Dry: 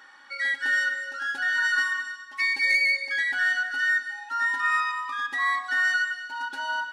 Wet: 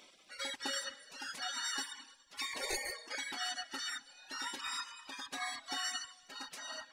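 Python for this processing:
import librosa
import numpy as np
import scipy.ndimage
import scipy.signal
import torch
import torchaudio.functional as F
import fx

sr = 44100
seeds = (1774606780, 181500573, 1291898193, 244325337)

y = fx.dereverb_blind(x, sr, rt60_s=0.98)
y = fx.band_shelf(y, sr, hz=640.0, db=14.0, octaves=1.7, at=(2.53, 3.15))
y = fx.spec_gate(y, sr, threshold_db=-20, keep='weak')
y = y * 10.0 ** (4.5 / 20.0)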